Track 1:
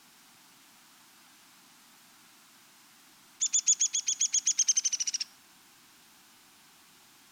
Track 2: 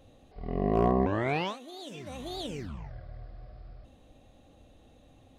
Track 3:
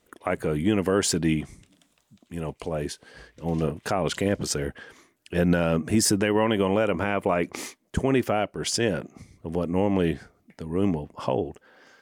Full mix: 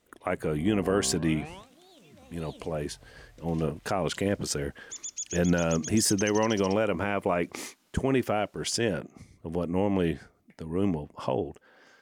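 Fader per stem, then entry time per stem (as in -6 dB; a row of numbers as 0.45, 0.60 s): -11.5, -13.0, -3.0 dB; 1.50, 0.10, 0.00 s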